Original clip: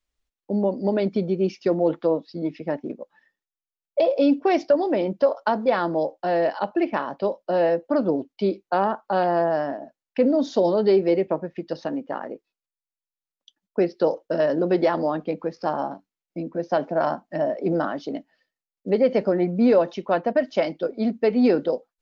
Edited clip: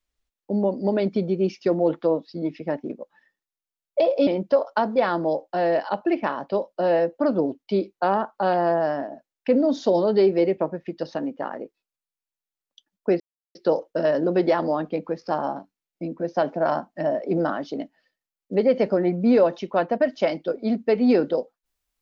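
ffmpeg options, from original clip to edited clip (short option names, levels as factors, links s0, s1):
-filter_complex "[0:a]asplit=3[s0][s1][s2];[s0]atrim=end=4.272[s3];[s1]atrim=start=4.968:end=13.9,asetpts=PTS-STARTPTS,afade=t=out:st=8.928:d=0.004:c=hsin,apad=pad_dur=0.35[s4];[s2]atrim=start=13.9,asetpts=PTS-STARTPTS,afade=t=in:d=0.004:c=hsin[s5];[s4][s5]concat=n=2:v=0:a=1[s6];[s3][s6]acrossfade=d=0.004:c1=hsin:c2=hsin"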